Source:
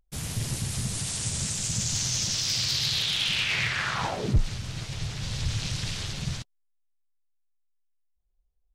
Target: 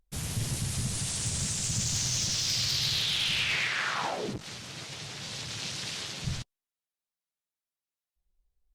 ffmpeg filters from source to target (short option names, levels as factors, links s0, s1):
-filter_complex "[0:a]acontrast=43,asoftclip=type=tanh:threshold=0.237,asettb=1/sr,asplit=3[s0][s1][s2];[s0]atrim=end=3.564[s3];[s1]atrim=start=3.56:end=6.24,asetpts=PTS-STARTPTS,afade=t=in:d=0.004:c=qsin,afade=t=out:st=2.676:d=0.004:c=qsin,highpass=240[s4];[s2]atrim=start=6.236[s5];[s3][s4]acrossfade=d=0.004:c1=hsin:c2=qsin[s6];[s6][s5]acrossfade=d=0.004:c1=qsin:c2=hsin,volume=0.473" -ar 48000 -c:a libopus -b:a 64k